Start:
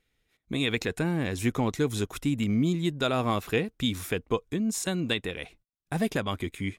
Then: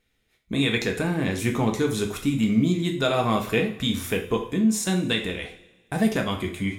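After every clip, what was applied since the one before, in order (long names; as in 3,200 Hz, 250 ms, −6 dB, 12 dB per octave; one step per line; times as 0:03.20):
coupled-rooms reverb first 0.43 s, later 1.6 s, from −19 dB, DRR 2 dB
level +2 dB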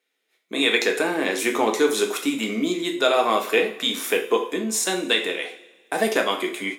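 high-pass filter 330 Hz 24 dB per octave
automatic gain control gain up to 9.5 dB
level −2.5 dB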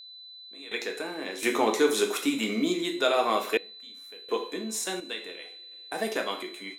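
sample-and-hold tremolo 1.4 Hz, depth 95%
steady tone 4,000 Hz −41 dBFS
level −3 dB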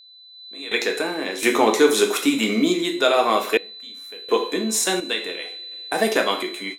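automatic gain control gain up to 13 dB
level −2 dB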